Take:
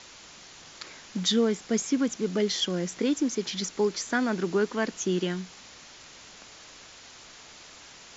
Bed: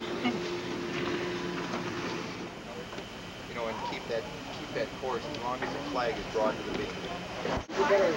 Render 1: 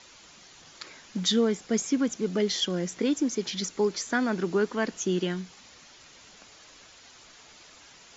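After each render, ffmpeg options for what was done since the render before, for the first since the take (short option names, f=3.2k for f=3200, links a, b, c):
-af "afftdn=nr=6:nf=-49"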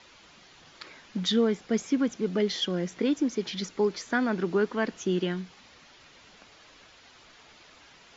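-af "lowpass=4.2k"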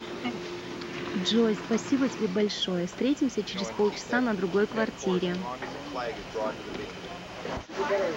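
-filter_complex "[1:a]volume=-2.5dB[a];[0:a][a]amix=inputs=2:normalize=0"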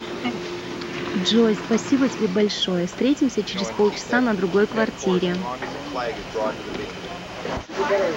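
-af "volume=6.5dB"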